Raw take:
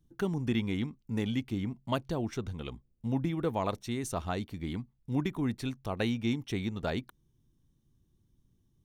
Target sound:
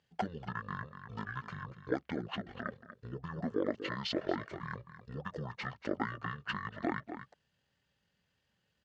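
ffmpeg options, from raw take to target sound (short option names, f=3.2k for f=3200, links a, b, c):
-filter_complex "[0:a]asplit=2[a][b];[b]aecho=0:1:239:0.168[c];[a][c]amix=inputs=2:normalize=0,acompressor=threshold=-35dB:ratio=6,asetrate=22050,aresample=44100,atempo=2,highpass=310,lowpass=4k,volume=10dB"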